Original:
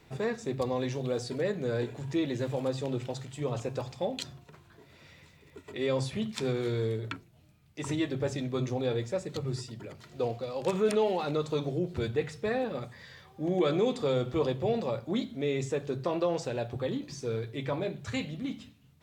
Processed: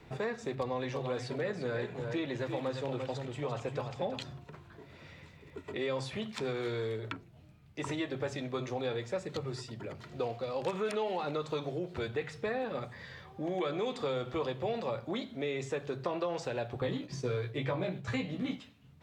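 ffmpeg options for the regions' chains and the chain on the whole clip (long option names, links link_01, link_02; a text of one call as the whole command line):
ffmpeg -i in.wav -filter_complex "[0:a]asettb=1/sr,asplit=3[link_01][link_02][link_03];[link_01]atrim=end=0.554[link_04];[link_02]atrim=start=0.55:end=4.23,asetpts=PTS-STARTPTS,afade=type=in:duration=0.004:curve=qsin,afade=type=out:start_time=3.676:duration=0.004:curve=qsin,bass=frequency=250:gain=3,treble=frequency=4000:gain=-4,aecho=1:1:344:0.376,atrim=end_sample=162288[link_05];[link_03]atrim=start=4.226[link_06];[link_04][link_05]acrossfade=duration=0.004:curve1=hsin:curve2=qsin[link_07];[link_07][link_06]acrossfade=duration=0.004:curve1=qsin:curve2=hsin,asettb=1/sr,asplit=3[link_08][link_09][link_10];[link_08]atrim=end=16.814[link_11];[link_09]atrim=start=16.81:end=18.6,asetpts=PTS-STARTPTS,afade=type=in:duration=0.004:curve=qsin,afade=type=out:start_time=1.786:duration=0.004:curve=qsin,agate=range=-33dB:threshold=-41dB:ratio=3:release=100:detection=peak,equalizer=frequency=140:width=0.47:gain=14,asplit=2[link_12][link_13];[link_13]adelay=16,volume=-3dB[link_14];[link_12][link_14]amix=inputs=2:normalize=0,atrim=end_sample=78939[link_15];[link_10]atrim=start=18.596[link_16];[link_11][link_15]acrossfade=duration=0.004:curve1=hsin:curve2=qsin[link_17];[link_17][link_16]acrossfade=duration=0.004:curve1=qsin:curve2=hsin,highshelf=frequency=4600:gain=-12,acrossover=split=450|900[link_18][link_19][link_20];[link_18]acompressor=threshold=-45dB:ratio=4[link_21];[link_19]acompressor=threshold=-42dB:ratio=4[link_22];[link_20]acompressor=threshold=-43dB:ratio=4[link_23];[link_21][link_22][link_23]amix=inputs=3:normalize=0,volume=4dB" out.wav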